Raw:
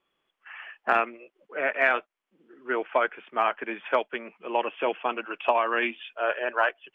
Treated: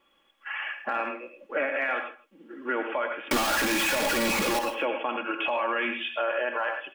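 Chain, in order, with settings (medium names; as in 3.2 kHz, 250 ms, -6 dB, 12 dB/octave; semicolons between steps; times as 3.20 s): 3.31–4.59 s: one-bit comparator; compression 3:1, threshold -33 dBFS, peak gain reduction 12 dB; comb 3.6 ms, depth 55%; delay 157 ms -20.5 dB; gated-style reverb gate 130 ms rising, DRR 7 dB; peak limiter -26.5 dBFS, peak gain reduction 9 dB; trim +8 dB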